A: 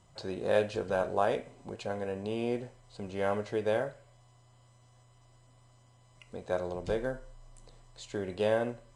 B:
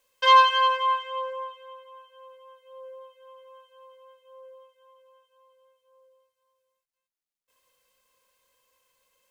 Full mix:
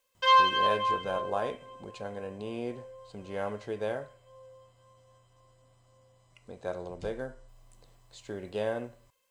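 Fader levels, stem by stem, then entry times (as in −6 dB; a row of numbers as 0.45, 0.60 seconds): −3.5, −5.0 decibels; 0.15, 0.00 seconds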